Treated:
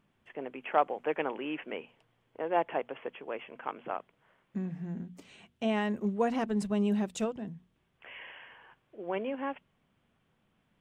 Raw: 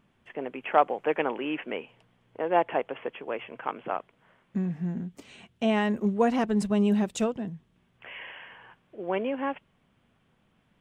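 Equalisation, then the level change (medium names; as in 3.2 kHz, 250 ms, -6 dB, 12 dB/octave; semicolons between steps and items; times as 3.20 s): hum notches 60/120/180/240 Hz; -5.0 dB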